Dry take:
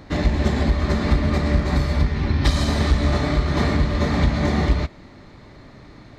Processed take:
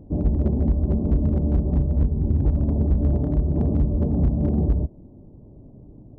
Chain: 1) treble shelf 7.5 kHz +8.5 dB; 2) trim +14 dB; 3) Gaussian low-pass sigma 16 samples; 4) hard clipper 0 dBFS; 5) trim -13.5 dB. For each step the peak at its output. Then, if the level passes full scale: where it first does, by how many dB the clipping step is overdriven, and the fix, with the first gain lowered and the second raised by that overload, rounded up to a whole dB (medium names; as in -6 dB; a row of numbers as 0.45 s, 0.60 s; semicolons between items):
-6.5 dBFS, +7.5 dBFS, +7.0 dBFS, 0.0 dBFS, -13.5 dBFS; step 2, 7.0 dB; step 2 +7 dB, step 5 -6.5 dB